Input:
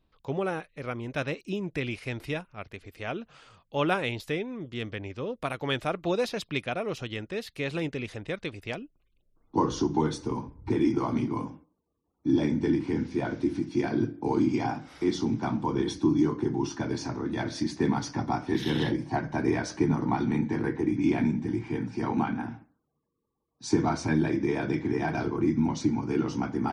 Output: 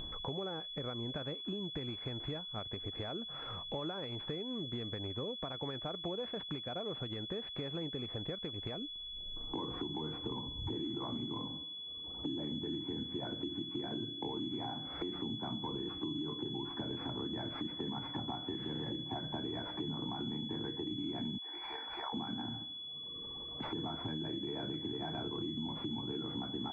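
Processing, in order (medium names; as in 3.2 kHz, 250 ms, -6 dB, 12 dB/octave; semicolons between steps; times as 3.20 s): 21.38–22.13 s: high-pass 720 Hz 24 dB/octave; upward compressor, threshold -27 dBFS; peak limiter -19.5 dBFS, peak gain reduction 8.5 dB; compression 6:1, threshold -36 dBFS, peak gain reduction 12 dB; class-D stage that switches slowly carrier 3.4 kHz; trim -1.5 dB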